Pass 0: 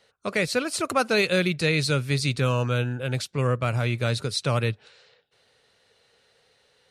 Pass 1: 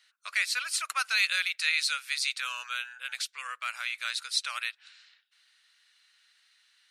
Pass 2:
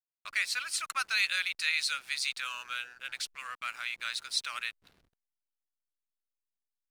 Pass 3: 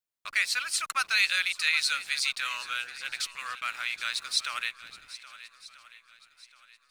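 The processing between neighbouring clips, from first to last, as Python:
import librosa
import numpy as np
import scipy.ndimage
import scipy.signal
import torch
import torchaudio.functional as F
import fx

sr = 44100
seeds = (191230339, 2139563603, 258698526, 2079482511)

y1 = scipy.signal.sosfilt(scipy.signal.butter(4, 1400.0, 'highpass', fs=sr, output='sos'), x)
y2 = fx.backlash(y1, sr, play_db=-44.5)
y2 = y2 * 10.0 ** (-2.5 / 20.0)
y3 = fx.echo_swing(y2, sr, ms=1289, ratio=1.5, feedback_pct=32, wet_db=-16.0)
y3 = y3 * 10.0 ** (4.0 / 20.0)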